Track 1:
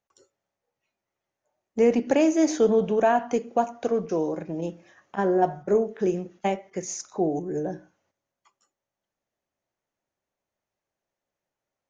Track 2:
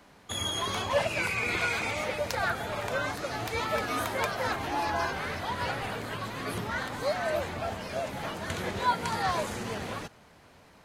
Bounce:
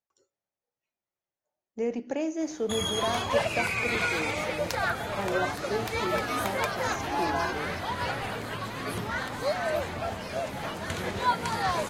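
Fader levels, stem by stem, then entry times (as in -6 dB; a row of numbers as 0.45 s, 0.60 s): -10.0 dB, +1.0 dB; 0.00 s, 2.40 s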